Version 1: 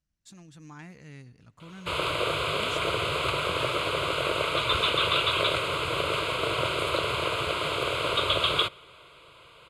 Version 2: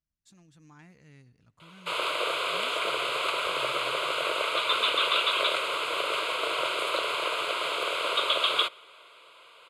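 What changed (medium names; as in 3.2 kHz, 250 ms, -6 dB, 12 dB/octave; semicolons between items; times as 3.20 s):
speech -8.0 dB; background: add high-pass 500 Hz 12 dB/octave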